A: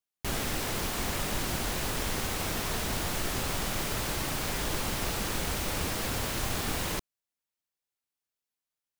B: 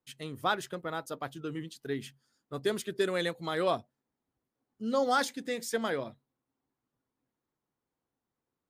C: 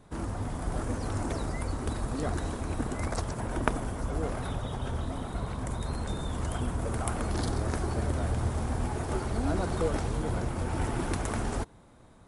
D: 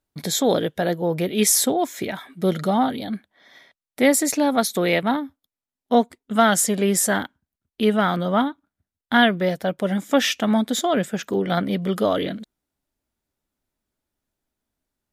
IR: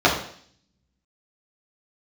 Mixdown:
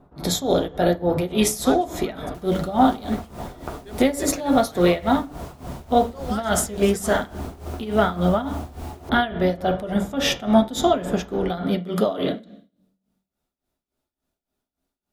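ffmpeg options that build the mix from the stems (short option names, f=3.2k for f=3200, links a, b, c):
-filter_complex "[0:a]adelay=2100,volume=-12dB[a];[1:a]adelay=1200,volume=-2dB[b];[2:a]lowpass=1.6k,acompressor=threshold=-33dB:ratio=6,volume=0.5dB,asplit=2[c][d];[d]volume=-19.5dB[e];[3:a]alimiter=limit=-10.5dB:level=0:latency=1:release=347,volume=1dB,asplit=2[f][g];[g]volume=-23.5dB[h];[4:a]atrim=start_sample=2205[i];[e][h]amix=inputs=2:normalize=0[j];[j][i]afir=irnorm=-1:irlink=0[k];[a][b][c][f][k]amix=inputs=5:normalize=0,tremolo=f=3.5:d=0.82"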